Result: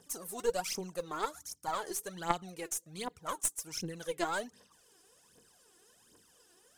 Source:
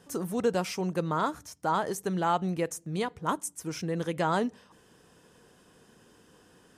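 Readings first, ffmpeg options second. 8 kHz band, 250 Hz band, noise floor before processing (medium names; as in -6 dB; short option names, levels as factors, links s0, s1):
+3.0 dB, -13.0 dB, -61 dBFS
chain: -af "aphaser=in_gain=1:out_gain=1:delay=3:decay=0.72:speed=1.3:type=triangular,bass=f=250:g=-7,treble=f=4000:g=11,aeval=exprs='0.501*(cos(1*acos(clip(val(0)/0.501,-1,1)))-cos(1*PI/2))+0.141*(cos(2*acos(clip(val(0)/0.501,-1,1)))-cos(2*PI/2))+0.0398*(cos(3*acos(clip(val(0)/0.501,-1,1)))-cos(3*PI/2))':c=same,volume=0.376"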